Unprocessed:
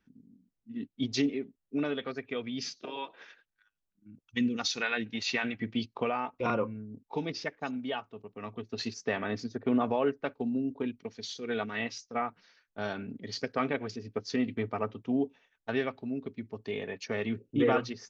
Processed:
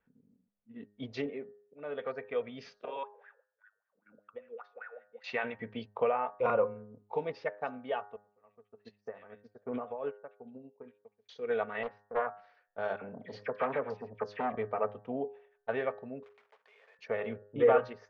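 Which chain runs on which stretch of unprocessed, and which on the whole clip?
0:01.24–0:02.04: high-pass filter 48 Hz + volume swells 285 ms + high-frequency loss of the air 96 metres
0:03.03–0:05.24: LFO wah 5.1 Hz 440–1,800 Hz, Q 11 + multiband upward and downward compressor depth 100%
0:08.16–0:11.29: dynamic equaliser 620 Hz, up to −4 dB, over −39 dBFS, Q 1.3 + multiband delay without the direct sound lows, highs 70 ms, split 1,800 Hz + expander for the loud parts 2.5 to 1, over −41 dBFS
0:11.83–0:12.27: low-pass filter 1,400 Hz + highs frequency-modulated by the lows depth 0.67 ms
0:12.96–0:14.56: parametric band 210 Hz +3.5 dB 1.5 octaves + all-pass dispersion lows, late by 56 ms, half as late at 1,700 Hz + saturating transformer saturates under 930 Hz
0:16.23–0:16.99: one scale factor per block 3 bits + high-pass filter 1,200 Hz + downward compressor 4 to 1, threshold −56 dBFS
whole clip: low-pass filter 1,800 Hz 12 dB per octave; low shelf with overshoot 400 Hz −6.5 dB, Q 3; hum removal 103 Hz, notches 18

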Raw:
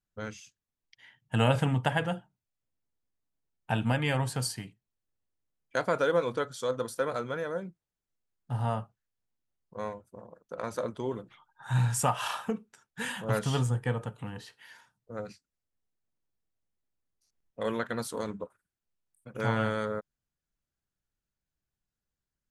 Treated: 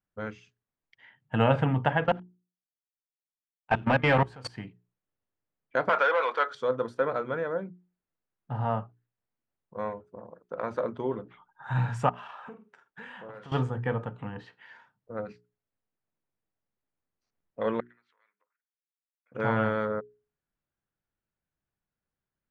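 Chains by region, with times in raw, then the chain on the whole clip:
0:02.04–0:04.56: low-shelf EQ 280 Hz −7.5 dB + leveller curve on the samples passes 3 + output level in coarse steps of 23 dB
0:05.89–0:06.55: mid-hump overdrive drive 18 dB, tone 4,900 Hz, clips at −14 dBFS + high-pass filter 780 Hz
0:12.09–0:13.52: bass and treble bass −9 dB, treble −3 dB + downward compressor 16 to 1, threshold −42 dBFS + double-tracking delay 48 ms −10 dB
0:17.80–0:19.32: high-shelf EQ 2,100 Hz −9 dB + downward compressor 8 to 1, threshold −42 dBFS + four-pole ladder band-pass 2,400 Hz, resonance 55%
whole clip: low-pass filter 2,100 Hz 12 dB per octave; low-shelf EQ 69 Hz −10 dB; mains-hum notches 60/120/180/240/300/360/420 Hz; level +3.5 dB

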